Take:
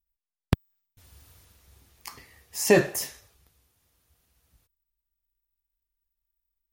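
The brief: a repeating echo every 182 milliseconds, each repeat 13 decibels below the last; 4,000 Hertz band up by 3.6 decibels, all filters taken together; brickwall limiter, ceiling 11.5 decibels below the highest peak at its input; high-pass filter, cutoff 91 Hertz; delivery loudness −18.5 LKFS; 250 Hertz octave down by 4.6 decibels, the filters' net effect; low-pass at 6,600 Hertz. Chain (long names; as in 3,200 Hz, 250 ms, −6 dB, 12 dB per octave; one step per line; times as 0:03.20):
high-pass filter 91 Hz
low-pass filter 6,600 Hz
parametric band 250 Hz −7.5 dB
parametric band 4,000 Hz +6.5 dB
brickwall limiter −15.5 dBFS
repeating echo 182 ms, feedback 22%, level −13 dB
level +14 dB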